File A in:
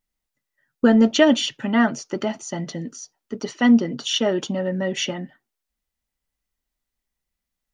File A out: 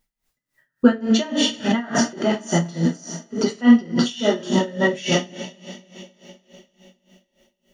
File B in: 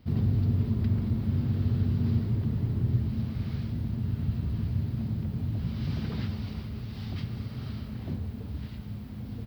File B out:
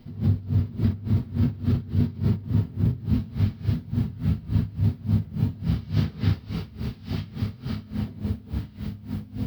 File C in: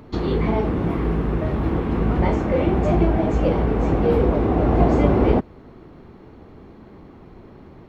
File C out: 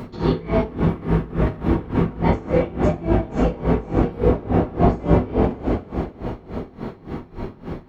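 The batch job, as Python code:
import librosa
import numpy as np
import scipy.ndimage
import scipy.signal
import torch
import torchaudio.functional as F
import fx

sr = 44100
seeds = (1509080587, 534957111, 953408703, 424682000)

p1 = fx.rev_double_slope(x, sr, seeds[0], early_s=0.58, late_s=4.4, knee_db=-21, drr_db=-4.0)
p2 = fx.over_compress(p1, sr, threshold_db=-22.0, ratio=-0.5)
p3 = p1 + (p2 * 10.0 ** (1.0 / 20.0))
p4 = p3 * 10.0 ** (-21 * (0.5 - 0.5 * np.cos(2.0 * np.pi * 3.5 * np.arange(len(p3)) / sr)) / 20.0)
y = p4 * 10.0 ** (-2.5 / 20.0)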